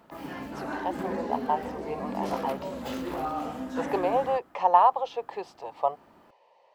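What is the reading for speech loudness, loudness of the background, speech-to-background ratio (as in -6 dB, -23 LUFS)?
-28.5 LUFS, -35.0 LUFS, 6.5 dB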